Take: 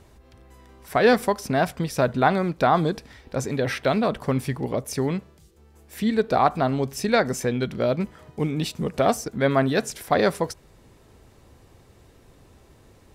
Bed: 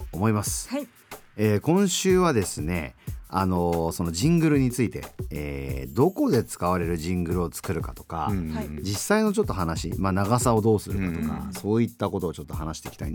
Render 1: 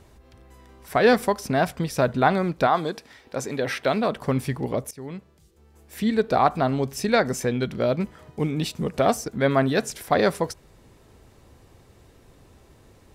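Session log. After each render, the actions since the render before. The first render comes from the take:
0:02.66–0:04.20: high-pass filter 510 Hz → 160 Hz 6 dB per octave
0:04.91–0:06.16: fade in equal-power, from −20.5 dB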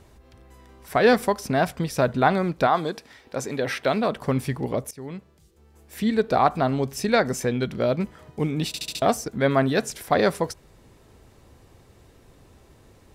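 0:08.67: stutter in place 0.07 s, 5 plays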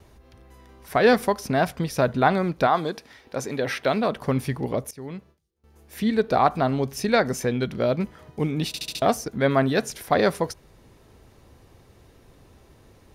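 noise gate with hold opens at −46 dBFS
notch filter 7,700 Hz, Q 7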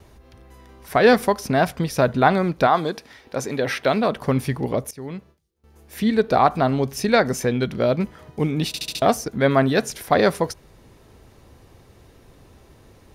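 level +3 dB
brickwall limiter −2 dBFS, peak gain reduction 1 dB

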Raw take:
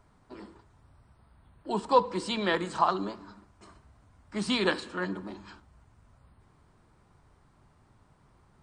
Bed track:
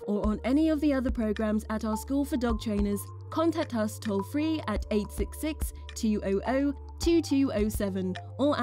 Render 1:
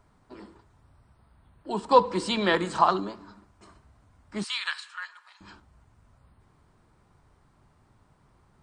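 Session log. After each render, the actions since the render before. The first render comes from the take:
0:01.91–0:03.00: clip gain +4 dB
0:04.44–0:05.41: inverse Chebyshev high-pass filter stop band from 270 Hz, stop band 70 dB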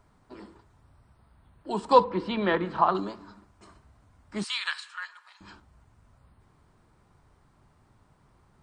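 0:02.04–0:02.95: high-frequency loss of the air 360 metres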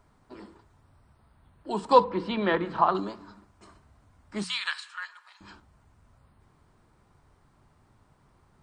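mains-hum notches 60/120/180 Hz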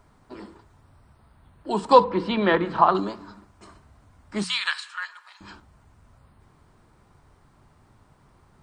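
level +5 dB
brickwall limiter −3 dBFS, peak gain reduction 2 dB

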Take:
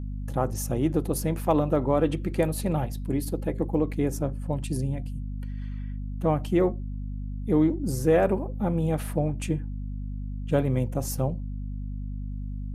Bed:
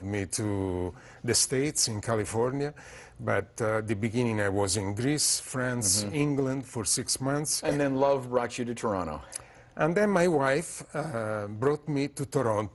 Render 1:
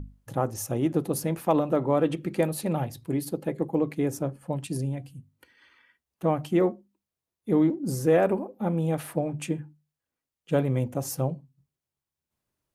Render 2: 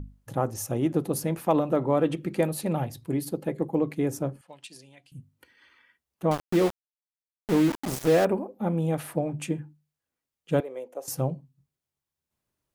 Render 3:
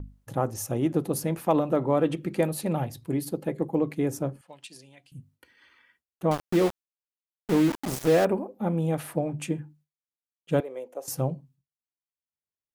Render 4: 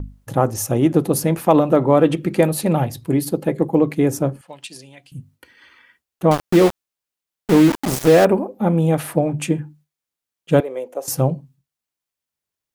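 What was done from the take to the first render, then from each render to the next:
mains-hum notches 50/100/150/200/250 Hz
0:04.41–0:05.12: resonant band-pass 3,600 Hz, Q 0.94; 0:06.31–0:08.25: centre clipping without the shift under −27 dBFS; 0:10.60–0:11.08: four-pole ladder high-pass 400 Hz, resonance 50%
noise gate with hold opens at −54 dBFS
level +9.5 dB; brickwall limiter −2 dBFS, peak gain reduction 1 dB

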